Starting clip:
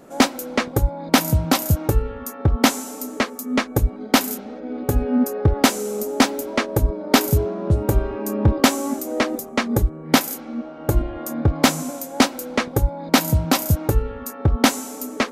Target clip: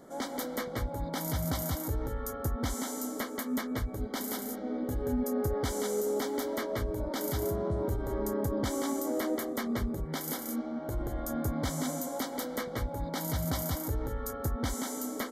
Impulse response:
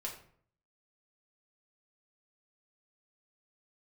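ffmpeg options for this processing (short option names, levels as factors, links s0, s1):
-af "acompressor=threshold=0.126:ratio=4,alimiter=limit=0.112:level=0:latency=1:release=29,asuperstop=centerf=2600:order=12:qfactor=4.1,aecho=1:1:179:0.708,volume=0.473"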